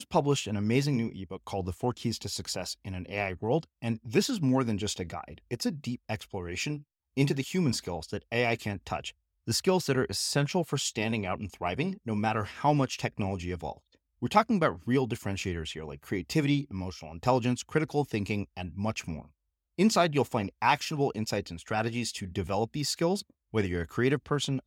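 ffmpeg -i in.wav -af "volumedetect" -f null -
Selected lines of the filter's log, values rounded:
mean_volume: -30.3 dB
max_volume: -9.4 dB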